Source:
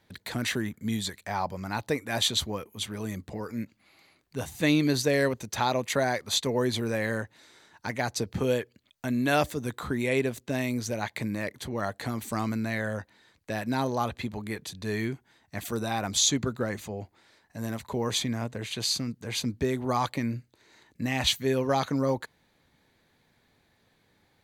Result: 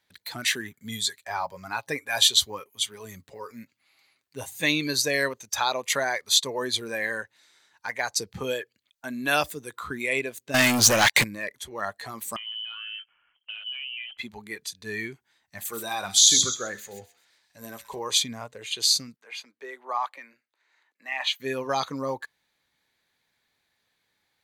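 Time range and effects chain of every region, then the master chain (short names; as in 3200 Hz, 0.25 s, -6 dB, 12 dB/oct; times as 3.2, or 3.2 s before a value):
0.6–4.65 HPF 44 Hz + comb 7.4 ms, depth 34% + short-mantissa float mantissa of 6-bit
10.54–11.24 high shelf 11000 Hz -3.5 dB + sample leveller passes 5
12.36–14.18 compressor 4:1, threshold -39 dBFS + inverted band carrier 3200 Hz + Doppler distortion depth 0.37 ms
15.55–17.99 de-hum 70.42 Hz, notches 30 + thin delay 0.129 s, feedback 35%, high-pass 2600 Hz, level -3.5 dB
19.16–21.4 HPF 230 Hz 24 dB/oct + three-band isolator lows -12 dB, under 590 Hz, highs -13 dB, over 2600 Hz
whole clip: spectral noise reduction 10 dB; tilt shelf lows -7.5 dB, about 790 Hz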